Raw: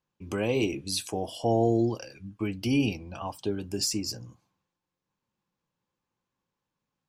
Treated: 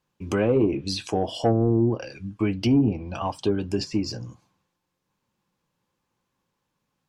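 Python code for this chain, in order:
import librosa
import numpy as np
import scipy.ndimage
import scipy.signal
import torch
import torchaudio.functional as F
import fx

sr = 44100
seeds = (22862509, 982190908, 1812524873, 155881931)

y = fx.env_lowpass_down(x, sr, base_hz=320.0, full_db=-19.5)
y = 10.0 ** (-17.0 / 20.0) * np.tanh(y / 10.0 ** (-17.0 / 20.0))
y = y * 10.0 ** (7.5 / 20.0)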